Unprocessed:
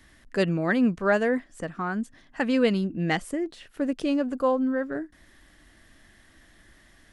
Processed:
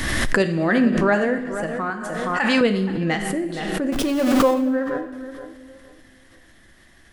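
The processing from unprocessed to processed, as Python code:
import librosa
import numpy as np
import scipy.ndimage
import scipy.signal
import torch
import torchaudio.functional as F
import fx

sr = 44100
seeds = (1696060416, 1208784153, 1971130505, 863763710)

p1 = fx.zero_step(x, sr, step_db=-28.5, at=(3.92, 4.54))
p2 = fx.level_steps(p1, sr, step_db=10)
p3 = p1 + (p2 * librosa.db_to_amplitude(-0.5))
p4 = fx.low_shelf_res(p3, sr, hz=630.0, db=-10.0, q=1.5, at=(1.9, 2.61))
p5 = p4 + fx.echo_tape(p4, sr, ms=472, feedback_pct=28, wet_db=-11.0, lp_hz=2000.0, drive_db=6.0, wow_cents=33, dry=0)
p6 = fx.rev_double_slope(p5, sr, seeds[0], early_s=0.85, late_s=2.6, knee_db=-19, drr_db=6.0)
p7 = fx.pre_swell(p6, sr, db_per_s=25.0)
y = p7 * librosa.db_to_amplitude(-2.0)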